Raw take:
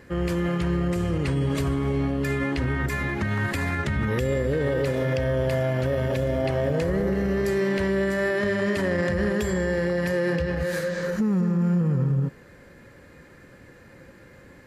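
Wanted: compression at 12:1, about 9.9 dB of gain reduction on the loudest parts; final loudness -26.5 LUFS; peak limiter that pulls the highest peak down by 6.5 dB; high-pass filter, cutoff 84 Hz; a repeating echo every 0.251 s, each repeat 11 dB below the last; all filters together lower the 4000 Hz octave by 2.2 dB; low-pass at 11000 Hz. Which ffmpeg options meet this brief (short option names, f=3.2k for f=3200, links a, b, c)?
-af "highpass=84,lowpass=11k,equalizer=f=4k:t=o:g=-3,acompressor=threshold=-30dB:ratio=12,alimiter=level_in=4.5dB:limit=-24dB:level=0:latency=1,volume=-4.5dB,aecho=1:1:251|502|753:0.282|0.0789|0.0221,volume=9.5dB"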